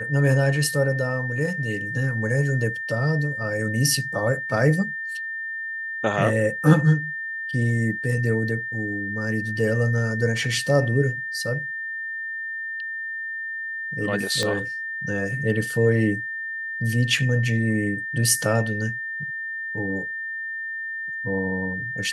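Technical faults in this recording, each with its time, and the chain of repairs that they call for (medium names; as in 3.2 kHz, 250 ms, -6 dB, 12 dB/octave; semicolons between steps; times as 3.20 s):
whine 1.8 kHz -28 dBFS
14.43 s: pop -11 dBFS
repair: de-click; band-stop 1.8 kHz, Q 30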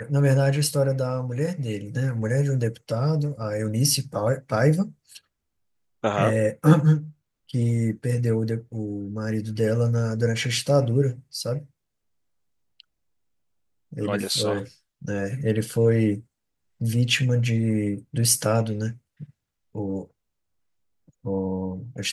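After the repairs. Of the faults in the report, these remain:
14.43 s: pop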